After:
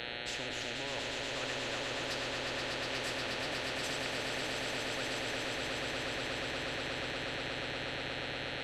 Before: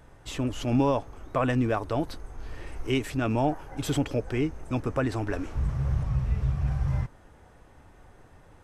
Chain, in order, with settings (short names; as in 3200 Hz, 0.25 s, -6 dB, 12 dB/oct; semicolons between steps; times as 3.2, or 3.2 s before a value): reverse; compressor 4:1, threshold -35 dBFS, peak gain reduction 13.5 dB; reverse; swelling echo 0.12 s, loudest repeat 8, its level -6 dB; buzz 120 Hz, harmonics 36, -50 dBFS 0 dB/oct; vowel filter e; reverb, pre-delay 3 ms, DRR 7.5 dB; spectral compressor 4:1; gain +6 dB